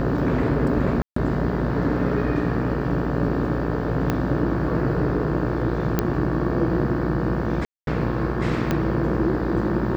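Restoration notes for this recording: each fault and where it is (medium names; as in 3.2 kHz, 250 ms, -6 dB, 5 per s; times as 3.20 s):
buzz 60 Hz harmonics 30 -27 dBFS
1.02–1.16 s: dropout 144 ms
4.10 s: pop -9 dBFS
5.99 s: pop -6 dBFS
7.65–7.87 s: dropout 222 ms
8.71 s: pop -9 dBFS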